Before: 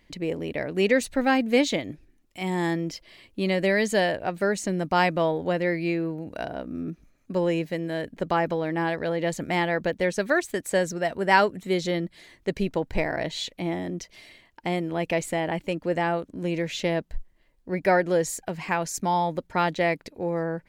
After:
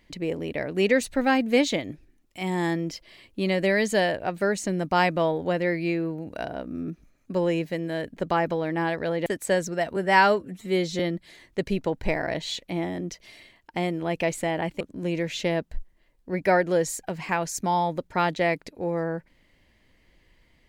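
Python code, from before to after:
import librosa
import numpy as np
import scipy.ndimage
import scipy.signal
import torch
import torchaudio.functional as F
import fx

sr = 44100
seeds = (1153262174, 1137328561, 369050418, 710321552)

y = fx.edit(x, sr, fx.cut(start_s=9.26, length_s=1.24),
    fx.stretch_span(start_s=11.2, length_s=0.69, factor=1.5),
    fx.cut(start_s=15.7, length_s=0.5), tone=tone)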